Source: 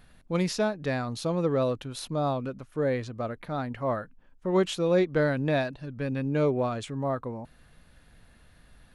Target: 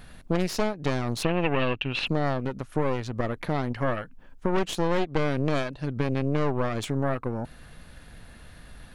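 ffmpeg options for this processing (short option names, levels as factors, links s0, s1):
-filter_complex "[0:a]acontrast=77,aeval=exprs='0.398*(cos(1*acos(clip(val(0)/0.398,-1,1)))-cos(1*PI/2))+0.158*(cos(4*acos(clip(val(0)/0.398,-1,1)))-cos(4*PI/2))':c=same,acompressor=threshold=0.0447:ratio=3,asplit=3[s0][s1][s2];[s0]afade=t=out:st=1.22:d=0.02[s3];[s1]lowpass=f=2700:t=q:w=11,afade=t=in:st=1.22:d=0.02,afade=t=out:st=2.06:d=0.02[s4];[s2]afade=t=in:st=2.06:d=0.02[s5];[s3][s4][s5]amix=inputs=3:normalize=0,volume=1.33"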